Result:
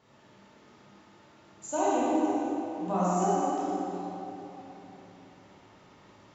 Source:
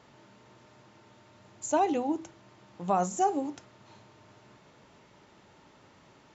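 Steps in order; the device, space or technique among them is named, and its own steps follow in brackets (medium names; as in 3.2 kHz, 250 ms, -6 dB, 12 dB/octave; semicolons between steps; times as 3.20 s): tunnel (flutter echo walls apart 9.5 m, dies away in 0.43 s; reverberation RT60 3.3 s, pre-delay 16 ms, DRR -8.5 dB); trim -8 dB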